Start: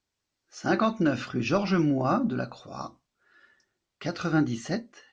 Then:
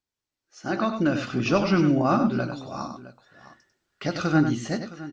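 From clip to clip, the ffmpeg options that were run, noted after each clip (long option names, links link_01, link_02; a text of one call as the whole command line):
ffmpeg -i in.wav -filter_complex "[0:a]dynaudnorm=framelen=360:gausssize=5:maxgain=11.5dB,asplit=2[link_01][link_02];[link_02]aecho=0:1:97|664:0.398|0.141[link_03];[link_01][link_03]amix=inputs=2:normalize=0,volume=-7dB" out.wav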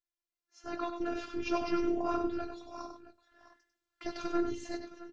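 ffmpeg -i in.wav -af "aeval=exprs='val(0)*sin(2*PI*88*n/s)':channel_layout=same,flanger=delay=0.5:depth=4.3:regen=-75:speed=1.3:shape=triangular,afftfilt=real='hypot(re,im)*cos(PI*b)':imag='0':win_size=512:overlap=0.75" out.wav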